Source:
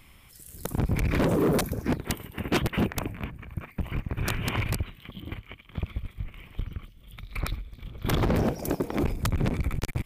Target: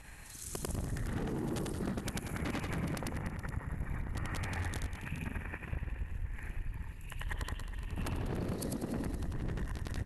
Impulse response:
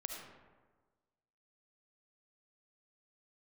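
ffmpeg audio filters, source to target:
-filter_complex "[0:a]afftfilt=real='re':imag='-im':win_size=8192:overlap=0.75,alimiter=level_in=2.5dB:limit=-24dB:level=0:latency=1:release=97,volume=-2.5dB,asetrate=35002,aresample=44100,atempo=1.25992,acompressor=threshold=-42dB:ratio=6,asplit=2[a][b];[b]aecho=0:1:194|420:0.237|0.237[c];[a][c]amix=inputs=2:normalize=0,volume=7.5dB"

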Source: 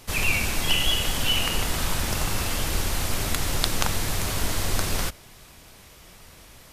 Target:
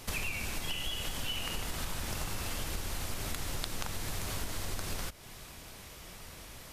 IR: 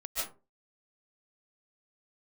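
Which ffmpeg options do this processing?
-af "acompressor=threshold=-33dB:ratio=6"

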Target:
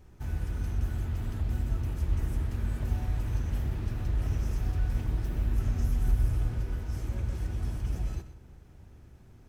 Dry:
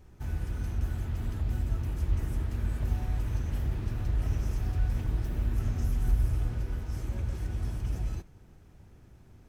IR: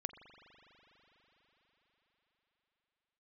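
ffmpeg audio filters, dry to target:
-filter_complex "[0:a]asplit=2[a][b];[1:a]atrim=start_sample=2205,adelay=125[c];[b][c]afir=irnorm=-1:irlink=0,volume=-11dB[d];[a][d]amix=inputs=2:normalize=0"

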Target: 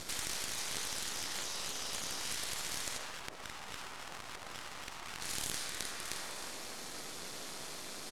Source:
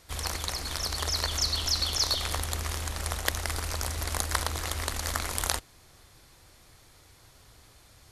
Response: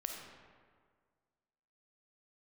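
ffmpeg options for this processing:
-filter_complex "[0:a]asplit=4[a][b][c][d];[b]adelay=309,afreqshift=31,volume=-15dB[e];[c]adelay=618,afreqshift=62,volume=-24.4dB[f];[d]adelay=927,afreqshift=93,volume=-33.7dB[g];[a][e][f][g]amix=inputs=4:normalize=0,asettb=1/sr,asplit=3[h][i][j];[h]atrim=end=2.974[k];[i]atrim=start=2.97:end=5.21,asetpts=PTS-STARTPTS,afade=t=in:d=0.004:c=qsin,afade=t=out:st=2.236:d=0.004:c=qsin,acrusher=samples=39:mix=1:aa=0.000001:lfo=1:lforange=39:lforate=3.6[l];[j]atrim=start=5.206[m];[k][l]acrossfade=d=0.004:c1=hsin:c2=qsin[n];[n][m]acrossfade=d=0.004:c1=qsin:c2=hsin,equalizer=f=190:t=o:w=2.2:g=7.5[o];[1:a]atrim=start_sample=2205[p];[o][p]afir=irnorm=-1:irlink=0,acompressor=threshold=-42dB:ratio=16,afftfilt=real='re*lt(hypot(re,im),0.00631)':imag='im*lt(hypot(re,im),0.00631)':win_size=1024:overlap=0.75,aeval=exprs='max(val(0),0)':c=same,lowpass=9.6k,highshelf=f=4.4k:g=5.5,volume=16dB"

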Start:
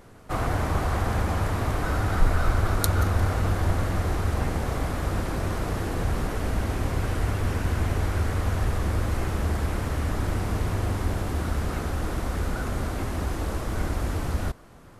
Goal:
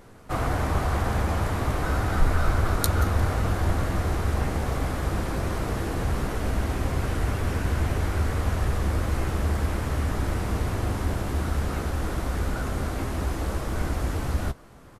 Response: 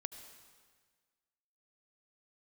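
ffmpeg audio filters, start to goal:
-filter_complex "[0:a]asplit=2[a][b];[b]adelay=15,volume=-11dB[c];[a][c]amix=inputs=2:normalize=0"

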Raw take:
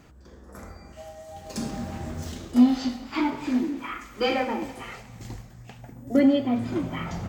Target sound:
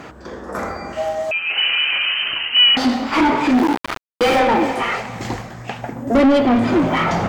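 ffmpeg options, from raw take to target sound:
-filter_complex "[0:a]asettb=1/sr,asplit=3[a][b][c];[a]atrim=end=3.554[d];[b]atrim=start=3.55:end=4.39,asetpts=PTS-STARTPTS,afade=t=in:d=0.004:c=qsin,afade=t=out:st=0.836:d=0.004:c=qsin,aeval=exprs='val(0)*gte(abs(val(0)),0.0398)':c=same[e];[c]atrim=start=4.386[f];[d][e]acrossfade=d=0.004:c1=hsin:c2=qsin[g];[g][f]acrossfade=d=0.004:c1=qsin:c2=hsin,asplit=2[h][i];[i]highpass=f=720:p=1,volume=29dB,asoftclip=type=tanh:threshold=-8dB[j];[h][j]amix=inputs=2:normalize=0,lowpass=f=1.4k:p=1,volume=-6dB,asettb=1/sr,asplit=3[k][l][m];[k]atrim=end=1.314[n];[l]atrim=start=1.31:end=2.77,asetpts=PTS-STARTPTS,afade=t=in:d=0.004:c=qsin,afade=t=out:st=1.456:d=0.004:c=qsin,lowpass=f=2.7k:t=q:w=0.5098,lowpass=f=2.7k:t=q:w=0.6013,lowpass=f=2.7k:t=q:w=0.9,lowpass=f=2.7k:t=q:w=2.563,afreqshift=-3200[o];[m]atrim=start=2.766[p];[n][o]acrossfade=d=0.004:c1=hsin:c2=qsin[q];[q][p]acrossfade=d=0.004:c1=qsin:c2=hsin,volume=2.5dB"

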